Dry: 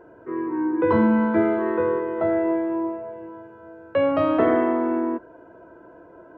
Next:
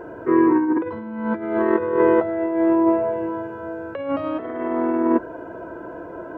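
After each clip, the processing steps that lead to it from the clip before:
compressor whose output falls as the input rises −26 dBFS, ratio −0.5
level +7 dB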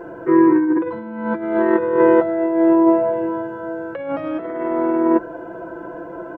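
comb filter 5.9 ms, depth 61%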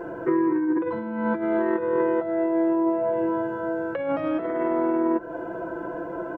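downward compressor 6 to 1, threshold −20 dBFS, peak gain reduction 11 dB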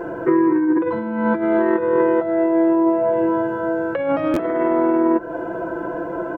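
buffer that repeats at 0:04.33, samples 512, times 2
level +6 dB

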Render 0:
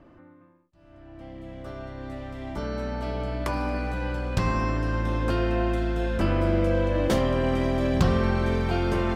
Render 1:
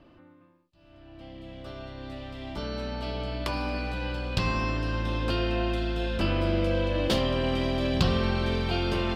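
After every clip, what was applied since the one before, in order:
flat-topped bell 3,600 Hz +9.5 dB 1.2 octaves
level −3 dB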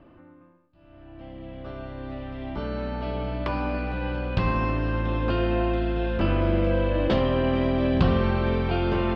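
low-pass filter 2,100 Hz 12 dB per octave
convolution reverb RT60 1.4 s, pre-delay 35 ms, DRR 15.5 dB
level +3.5 dB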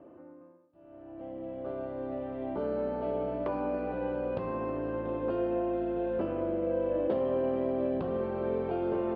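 downward compressor, threshold −27 dBFS, peak gain reduction 11.5 dB
resonant band-pass 480 Hz, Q 1.5
level +5 dB

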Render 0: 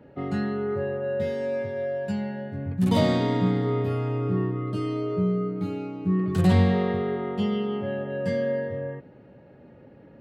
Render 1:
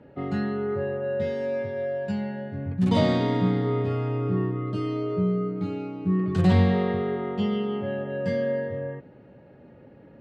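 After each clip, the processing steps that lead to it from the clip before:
low-pass filter 6,000 Hz 12 dB per octave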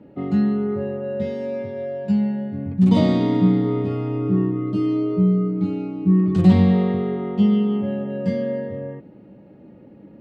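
thirty-one-band graphic EQ 200 Hz +11 dB, 315 Hz +9 dB, 1,600 Hz −7 dB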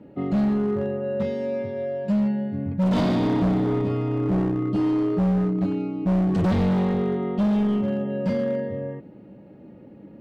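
gain into a clipping stage and back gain 18.5 dB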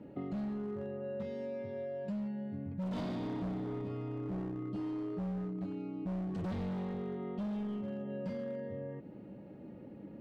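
downward compressor 4 to 1, threshold −35 dBFS, peak gain reduction 12.5 dB
level −4 dB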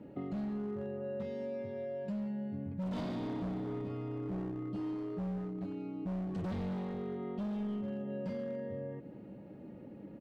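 single-tap delay 197 ms −17 dB

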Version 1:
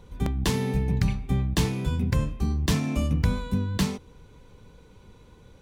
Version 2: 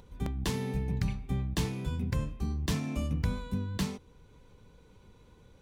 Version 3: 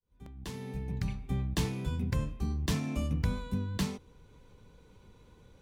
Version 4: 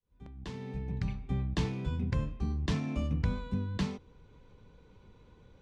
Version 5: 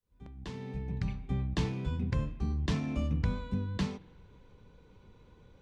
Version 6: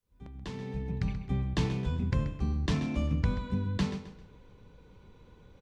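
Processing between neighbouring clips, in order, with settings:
upward compression, threshold −45 dBFS; level −7 dB
fade in at the beginning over 1.45 s
high-frequency loss of the air 110 metres
spring reverb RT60 1.7 s, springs 42/54 ms, chirp 25 ms, DRR 20 dB
repeating echo 132 ms, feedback 34%, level −12 dB; level +2 dB

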